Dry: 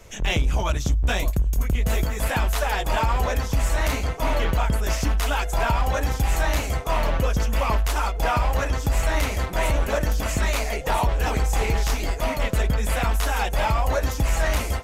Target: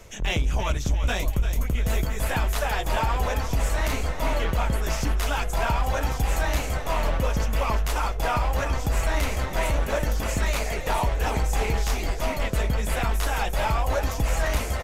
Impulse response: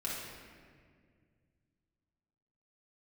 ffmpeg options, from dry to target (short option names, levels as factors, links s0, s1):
-filter_complex "[0:a]areverse,acompressor=mode=upward:threshold=0.0562:ratio=2.5,areverse,asplit=6[s0][s1][s2][s3][s4][s5];[s1]adelay=344,afreqshift=-46,volume=0.316[s6];[s2]adelay=688,afreqshift=-92,volume=0.148[s7];[s3]adelay=1032,afreqshift=-138,volume=0.07[s8];[s4]adelay=1376,afreqshift=-184,volume=0.0327[s9];[s5]adelay=1720,afreqshift=-230,volume=0.0155[s10];[s0][s6][s7][s8][s9][s10]amix=inputs=6:normalize=0,volume=0.75"